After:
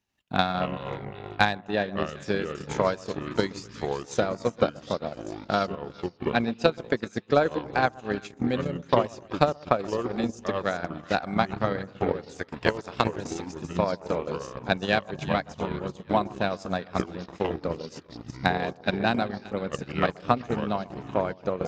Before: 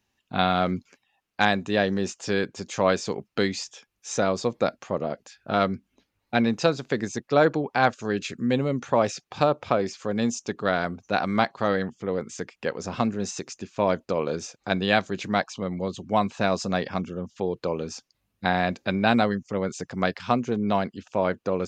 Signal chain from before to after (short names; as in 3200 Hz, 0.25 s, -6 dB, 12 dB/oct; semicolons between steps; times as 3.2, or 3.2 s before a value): 12.35–13.22 spectral limiter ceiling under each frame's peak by 16 dB; split-band echo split 1300 Hz, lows 0.125 s, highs 0.38 s, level -11 dB; echoes that change speed 95 ms, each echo -5 st, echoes 2, each echo -6 dB; 1.6–2.14 air absorption 80 m; transient shaper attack +10 dB, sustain -12 dB; gain -7 dB